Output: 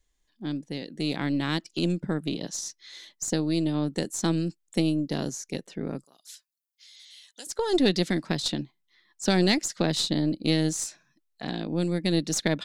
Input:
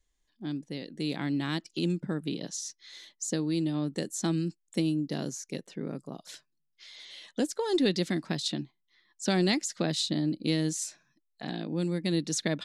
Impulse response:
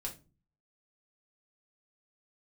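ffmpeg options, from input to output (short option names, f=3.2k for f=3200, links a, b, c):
-filter_complex "[0:a]aeval=exprs='0.211*(cos(1*acos(clip(val(0)/0.211,-1,1)))-cos(1*PI/2))+0.0335*(cos(2*acos(clip(val(0)/0.211,-1,1)))-cos(2*PI/2))+0.00473*(cos(6*acos(clip(val(0)/0.211,-1,1)))-cos(6*PI/2))':c=same,asettb=1/sr,asplit=3[a][b][c];[a]atrim=end=6.044[d];[b]atrim=start=6.04:end=7.47,asetpts=PTS-STARTPTS,afade=t=in:d=0.004:c=qsin,afade=t=out:st=1.426:d=0.004:c=qsin,aderivative[e];[c]atrim=start=7.466[f];[d][e]acrossfade=d=0.004:c1=hsin:c2=qsin[g];[g][f]acrossfade=d=0.004:c1=qsin:c2=hsin,volume=3dB"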